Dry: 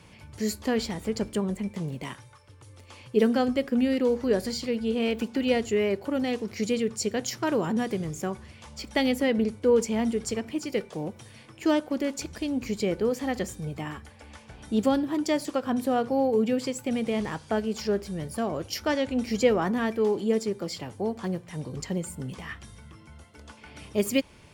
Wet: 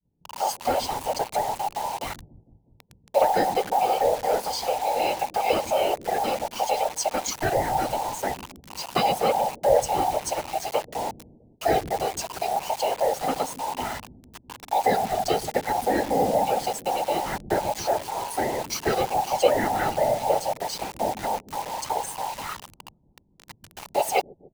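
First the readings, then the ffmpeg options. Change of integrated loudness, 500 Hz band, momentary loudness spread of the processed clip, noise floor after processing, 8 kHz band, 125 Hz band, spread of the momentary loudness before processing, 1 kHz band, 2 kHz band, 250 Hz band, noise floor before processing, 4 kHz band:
+2.0 dB, +2.0 dB, 10 LU, -61 dBFS, +5.5 dB, -2.5 dB, 12 LU, +12.5 dB, +2.0 dB, -9.0 dB, -52 dBFS, +3.0 dB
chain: -filter_complex "[0:a]afftfilt=real='real(if(between(b,1,1008),(2*floor((b-1)/48)+1)*48-b,b),0)':imag='imag(if(between(b,1,1008),(2*floor((b-1)/48)+1)*48-b,b),0)*if(between(b,1,1008),-1,1)':win_size=2048:overlap=0.75,afftfilt=real='hypot(re,im)*cos(2*PI*random(0))':imag='hypot(re,im)*sin(2*PI*random(1))':win_size=512:overlap=0.75,asplit=2[a][b];[b]acompressor=threshold=-40dB:ratio=6,volume=-2dB[c];[a][c]amix=inputs=2:normalize=0,agate=range=-33dB:threshold=-43dB:ratio=3:detection=peak,acrossover=split=290[d][e];[d]aecho=1:1:130|279.5|451.4|649.1|876.5:0.631|0.398|0.251|0.158|0.1[f];[e]acrusher=bits=6:mix=0:aa=0.000001[g];[f][g]amix=inputs=2:normalize=0,volume=6dB"

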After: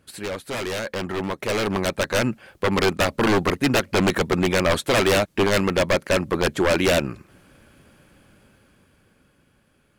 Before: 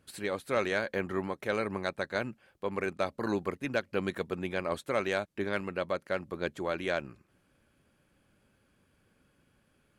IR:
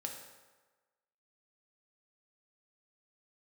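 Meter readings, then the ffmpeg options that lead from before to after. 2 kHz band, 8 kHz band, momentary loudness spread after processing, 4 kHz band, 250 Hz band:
+10.5 dB, +20.5 dB, 9 LU, +17.0 dB, +13.0 dB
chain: -af "aeval=exprs='0.0335*(abs(mod(val(0)/0.0335+3,4)-2)-1)':c=same,dynaudnorm=f=200:g=17:m=10.5dB,volume=6.5dB"

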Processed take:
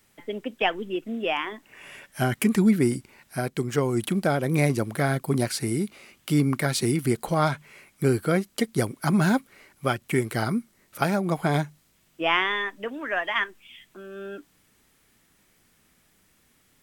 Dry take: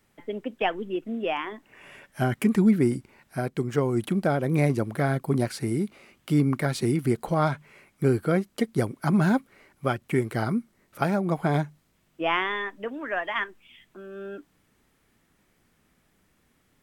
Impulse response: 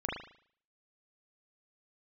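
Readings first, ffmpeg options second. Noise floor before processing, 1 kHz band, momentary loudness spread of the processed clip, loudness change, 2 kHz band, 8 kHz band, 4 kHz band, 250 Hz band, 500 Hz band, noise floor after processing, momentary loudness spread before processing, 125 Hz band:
-68 dBFS, +1.0 dB, 14 LU, +1.0 dB, +3.5 dB, +8.5 dB, +6.0 dB, 0.0 dB, +0.5 dB, -64 dBFS, 13 LU, 0.0 dB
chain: -af "highshelf=f=2.4k:g=9"

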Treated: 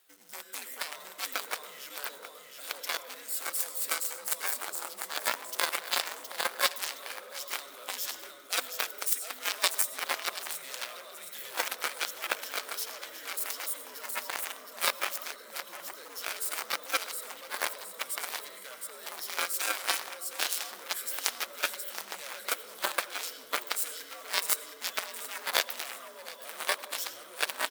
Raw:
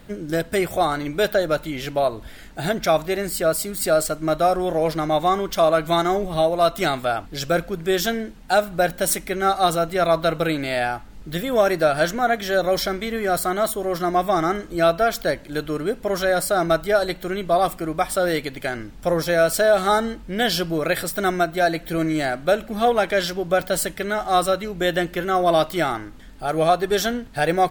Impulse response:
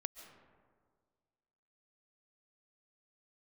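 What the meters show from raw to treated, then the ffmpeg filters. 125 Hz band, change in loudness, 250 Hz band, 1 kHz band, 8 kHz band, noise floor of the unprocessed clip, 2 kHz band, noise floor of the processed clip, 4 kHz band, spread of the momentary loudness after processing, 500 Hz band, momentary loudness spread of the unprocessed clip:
under -40 dB, -11.5 dB, -30.5 dB, -16.5 dB, -2.5 dB, -41 dBFS, -8.5 dB, -49 dBFS, -5.0 dB, 11 LU, -24.5 dB, 7 LU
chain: -filter_complex "[0:a]afreqshift=-120,asplit=2[a][b];[b]acrusher=bits=4:mix=0:aa=0.000001,volume=-10dB[c];[a][c]amix=inputs=2:normalize=0,aecho=1:1:717|1434|2151|2868|3585:0.531|0.234|0.103|0.0452|0.0199[d];[1:a]atrim=start_sample=2205,asetrate=70560,aresample=44100[e];[d][e]afir=irnorm=-1:irlink=0,aeval=exprs='0.355*(cos(1*acos(clip(val(0)/0.355,-1,1)))-cos(1*PI/2))+0.141*(cos(3*acos(clip(val(0)/0.355,-1,1)))-cos(3*PI/2))':c=same,highpass=600,crystalizer=i=4:c=0"

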